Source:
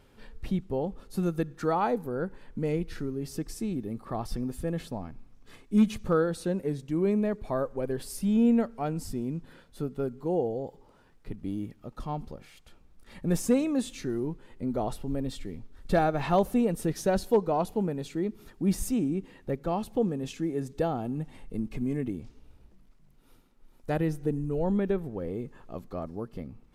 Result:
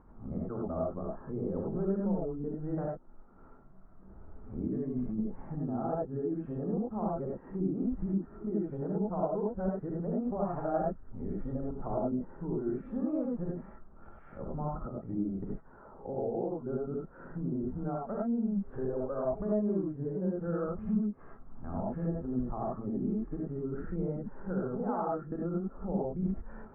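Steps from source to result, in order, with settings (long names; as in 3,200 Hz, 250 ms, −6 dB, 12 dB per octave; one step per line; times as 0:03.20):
played backwards from end to start
downward compressor 6 to 1, threshold −35 dBFS, peak gain reduction 16.5 dB
elliptic low-pass filter 1,400 Hz, stop band 70 dB
reverb whose tail is shaped and stops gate 120 ms rising, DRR −3 dB
one half of a high-frequency compander encoder only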